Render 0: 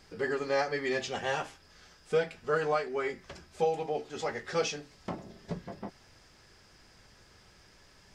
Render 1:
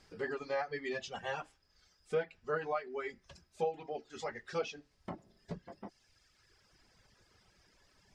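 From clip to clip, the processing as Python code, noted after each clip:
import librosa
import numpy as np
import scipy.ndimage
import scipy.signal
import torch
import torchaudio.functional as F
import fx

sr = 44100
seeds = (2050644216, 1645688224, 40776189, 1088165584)

y = fx.dereverb_blind(x, sr, rt60_s=1.6)
y = fx.env_lowpass_down(y, sr, base_hz=2700.0, full_db=-25.0)
y = y * librosa.db_to_amplitude(-5.5)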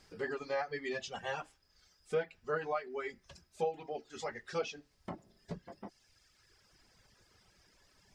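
y = fx.high_shelf(x, sr, hz=7200.0, db=5.5)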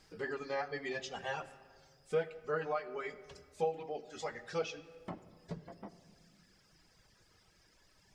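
y = fx.room_shoebox(x, sr, seeds[0], volume_m3=3700.0, walls='mixed', distance_m=0.59)
y = y * librosa.db_to_amplitude(-1.0)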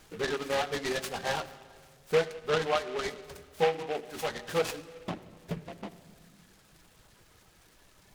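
y = fx.noise_mod_delay(x, sr, seeds[1], noise_hz=1800.0, depth_ms=0.078)
y = y * librosa.db_to_amplitude(7.5)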